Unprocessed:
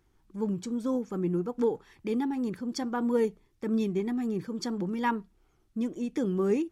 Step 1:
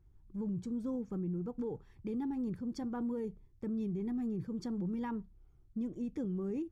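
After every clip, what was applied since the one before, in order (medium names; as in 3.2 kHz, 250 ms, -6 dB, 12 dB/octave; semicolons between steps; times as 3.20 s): FFT filter 110 Hz 0 dB, 250 Hz -12 dB, 2.7 kHz -22 dB; peak limiter -37.5 dBFS, peak gain reduction 8.5 dB; trim +7 dB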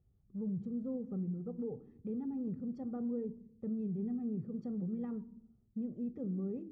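band-pass filter 280 Hz, Q 1.3; reverberation RT60 0.65 s, pre-delay 12 ms, DRR 17 dB; trim +1.5 dB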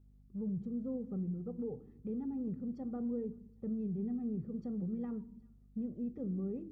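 hum 50 Hz, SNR 23 dB; feedback echo behind a high-pass 384 ms, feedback 77%, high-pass 1.7 kHz, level -23 dB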